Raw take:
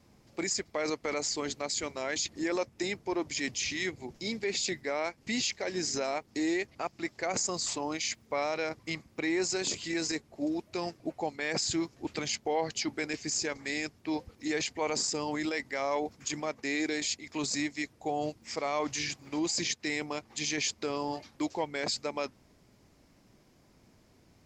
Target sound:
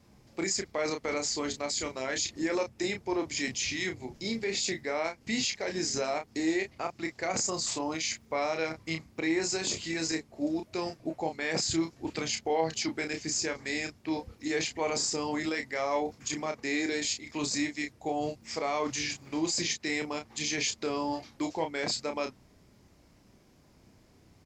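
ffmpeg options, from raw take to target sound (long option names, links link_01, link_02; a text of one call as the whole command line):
ffmpeg -i in.wav -filter_complex "[0:a]equalizer=frequency=70:width_type=o:width=2.3:gain=3,asplit=2[link_01][link_02];[link_02]adelay=31,volume=-6dB[link_03];[link_01][link_03]amix=inputs=2:normalize=0" out.wav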